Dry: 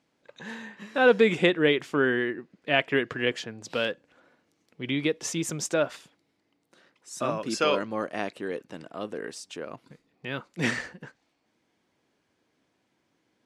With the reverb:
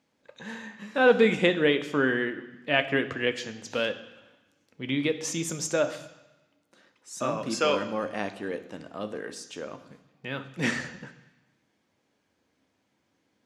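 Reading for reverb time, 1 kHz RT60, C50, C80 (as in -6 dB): 1.0 s, 1.1 s, 13.0 dB, 15.0 dB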